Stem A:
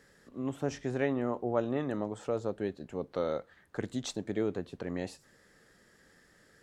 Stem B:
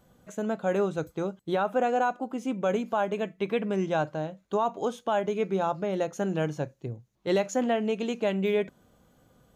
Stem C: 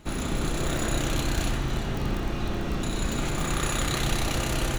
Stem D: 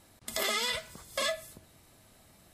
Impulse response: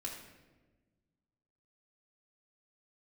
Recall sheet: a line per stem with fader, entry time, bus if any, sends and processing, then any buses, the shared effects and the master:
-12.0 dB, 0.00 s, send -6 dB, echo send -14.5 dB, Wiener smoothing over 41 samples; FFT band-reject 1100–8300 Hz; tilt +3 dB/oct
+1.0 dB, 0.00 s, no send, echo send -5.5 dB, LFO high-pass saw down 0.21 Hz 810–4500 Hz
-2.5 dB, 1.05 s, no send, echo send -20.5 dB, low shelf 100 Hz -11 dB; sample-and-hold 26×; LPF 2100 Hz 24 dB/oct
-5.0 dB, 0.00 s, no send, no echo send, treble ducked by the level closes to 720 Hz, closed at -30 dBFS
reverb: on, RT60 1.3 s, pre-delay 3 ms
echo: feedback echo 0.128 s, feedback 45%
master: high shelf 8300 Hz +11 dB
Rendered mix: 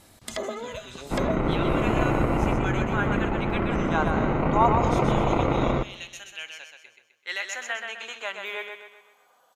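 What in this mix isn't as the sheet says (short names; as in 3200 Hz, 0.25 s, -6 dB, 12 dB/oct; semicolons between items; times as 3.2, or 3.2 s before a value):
stem C -2.5 dB -> +7.0 dB; stem D -5.0 dB -> +6.0 dB; master: missing high shelf 8300 Hz +11 dB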